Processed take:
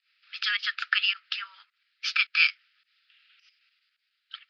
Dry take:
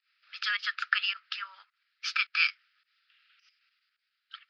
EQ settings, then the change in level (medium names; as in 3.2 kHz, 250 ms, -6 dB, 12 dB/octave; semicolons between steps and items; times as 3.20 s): band-pass filter 3.2 kHz, Q 0.91; +5.5 dB